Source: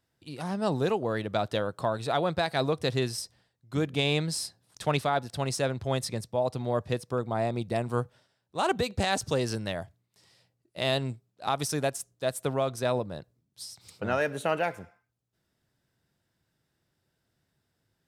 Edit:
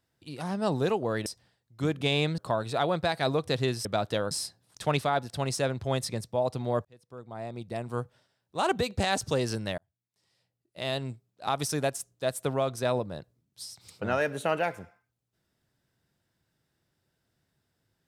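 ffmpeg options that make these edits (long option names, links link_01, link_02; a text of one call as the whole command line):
ffmpeg -i in.wav -filter_complex "[0:a]asplit=7[link_01][link_02][link_03][link_04][link_05][link_06][link_07];[link_01]atrim=end=1.262[link_08];[link_02]atrim=start=3.188:end=4.312[link_09];[link_03]atrim=start=1.718:end=3.192[link_10];[link_04]atrim=start=1.258:end=1.722[link_11];[link_05]atrim=start=4.308:end=6.85,asetpts=PTS-STARTPTS,afade=type=out:start_time=2.538:duration=0.004:curve=hsin[link_12];[link_06]atrim=start=6.85:end=9.78,asetpts=PTS-STARTPTS,afade=type=in:duration=1.73,afade=type=out:start_time=2.926:duration=0.004:curve=hsin[link_13];[link_07]atrim=start=9.78,asetpts=PTS-STARTPTS,afade=type=in:duration=1.84[link_14];[link_08][link_09]acrossfade=duration=0.004:curve1=hsin:curve2=hsin[link_15];[link_15][link_10]acrossfade=duration=0.004:curve1=hsin:curve2=hsin[link_16];[link_16][link_11]acrossfade=duration=0.004:curve1=hsin:curve2=hsin[link_17];[link_12][link_13][link_14]concat=n=3:v=0:a=1[link_18];[link_17][link_18]acrossfade=duration=0.004:curve1=hsin:curve2=hsin" out.wav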